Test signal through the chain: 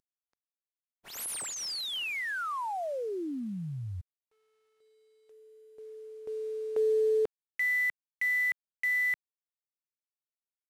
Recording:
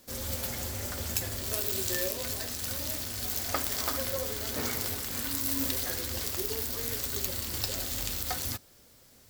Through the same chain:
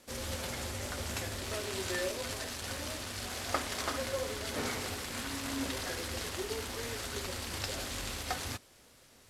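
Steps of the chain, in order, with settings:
variable-slope delta modulation 64 kbit/s
bass and treble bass −3 dB, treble −4 dB

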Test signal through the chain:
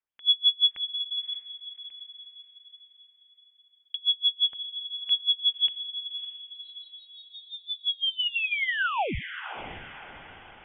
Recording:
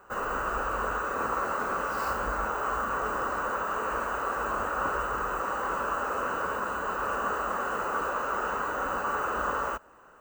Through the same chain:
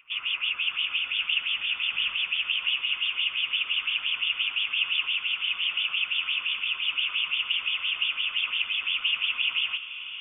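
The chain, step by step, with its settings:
auto-filter high-pass sine 5.8 Hz 620–2,900 Hz
feedback delay with all-pass diffusion 584 ms, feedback 46%, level −11 dB
voice inversion scrambler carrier 4,000 Hz

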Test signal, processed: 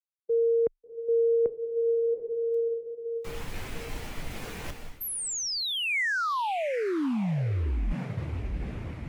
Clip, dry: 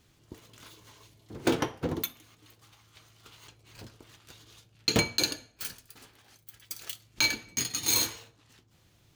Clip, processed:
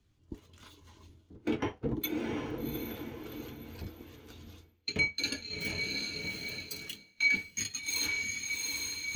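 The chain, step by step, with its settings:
dynamic equaliser 2,300 Hz, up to +7 dB, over −48 dBFS, Q 1.9
feedback delay with all-pass diffusion 737 ms, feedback 49%, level −9 dB
reversed playback
downward compressor 6 to 1, threshold −37 dBFS
reversed playback
frequency shifter −25 Hz
every bin expanded away from the loudest bin 1.5 to 1
level +6.5 dB

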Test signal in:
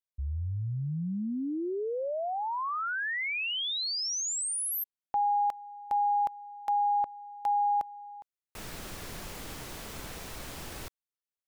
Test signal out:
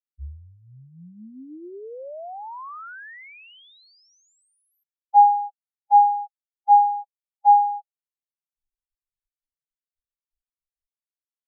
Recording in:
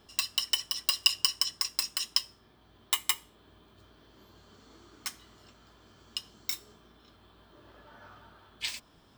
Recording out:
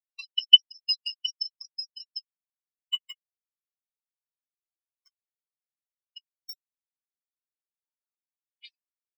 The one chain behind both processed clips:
sine wavefolder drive 13 dB, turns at −4.5 dBFS
reverb reduction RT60 1.9 s
every bin expanded away from the loudest bin 4 to 1
level +1.5 dB

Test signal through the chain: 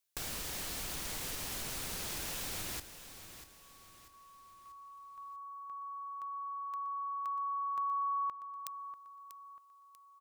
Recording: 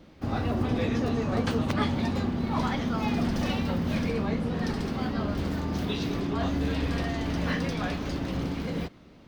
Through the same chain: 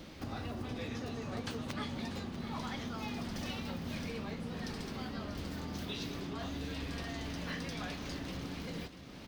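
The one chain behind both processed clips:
downward compressor 2.5 to 1, threshold −50 dBFS
high-shelf EQ 2,300 Hz +9.5 dB
repeating echo 641 ms, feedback 42%, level −12 dB
level +3 dB

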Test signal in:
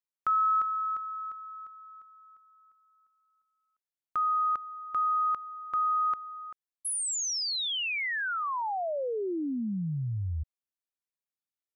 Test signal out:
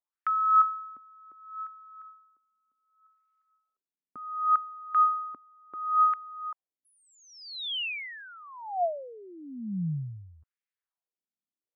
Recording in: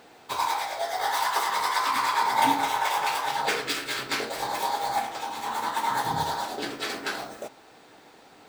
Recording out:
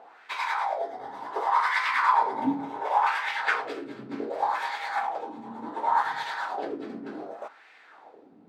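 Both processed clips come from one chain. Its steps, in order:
LFO wah 0.68 Hz 210–2,100 Hz, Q 2.8
level +8 dB

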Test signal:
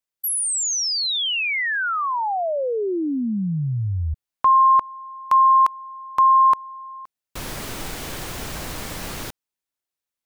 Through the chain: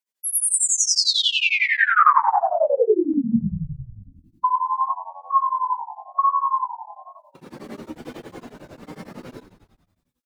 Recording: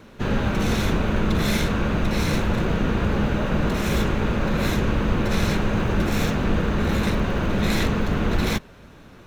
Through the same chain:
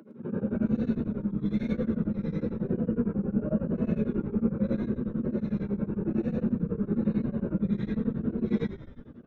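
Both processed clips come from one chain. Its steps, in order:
expanding power law on the bin magnitudes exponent 2.5
downward compressor 2.5 to 1, threshold −20 dBFS
reverb whose tail is shaped and stops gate 140 ms rising, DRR −5 dB
tape wow and flutter 0.87 Hz 77 cents
dynamic equaliser 1,200 Hz, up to +8 dB, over −37 dBFS, Q 3.6
high-pass filter 190 Hz 24 dB per octave
on a send: echo with shifted repeats 110 ms, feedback 58%, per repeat −71 Hz, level −11.5 dB
on the sum: tremolo along a rectified sine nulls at 11 Hz

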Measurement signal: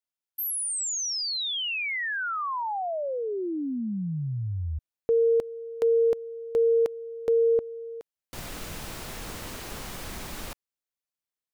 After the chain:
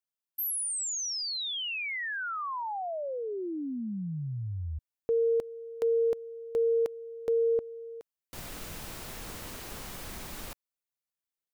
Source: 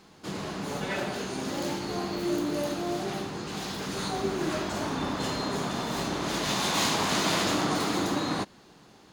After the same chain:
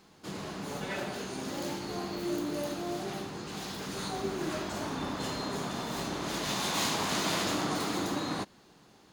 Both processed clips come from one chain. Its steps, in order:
high-shelf EQ 11,000 Hz +5 dB
level −4.5 dB

